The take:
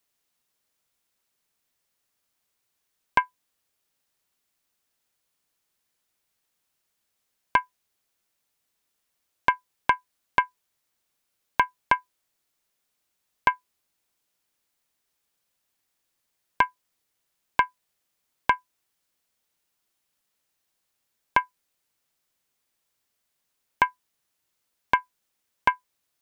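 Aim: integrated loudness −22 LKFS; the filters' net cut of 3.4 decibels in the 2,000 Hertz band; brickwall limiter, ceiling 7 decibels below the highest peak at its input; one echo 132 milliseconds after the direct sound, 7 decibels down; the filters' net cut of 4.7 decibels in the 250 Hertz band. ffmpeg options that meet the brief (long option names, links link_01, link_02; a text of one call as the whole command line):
ffmpeg -i in.wav -af "equalizer=frequency=250:width_type=o:gain=-6.5,equalizer=frequency=2000:width_type=o:gain=-4.5,alimiter=limit=-13.5dB:level=0:latency=1,aecho=1:1:132:0.447,volume=12.5dB" out.wav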